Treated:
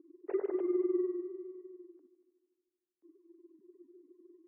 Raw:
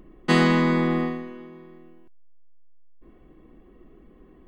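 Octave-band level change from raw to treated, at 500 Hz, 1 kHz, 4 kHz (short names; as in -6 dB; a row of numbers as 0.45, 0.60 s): -5.5 dB, under -25 dB, under -40 dB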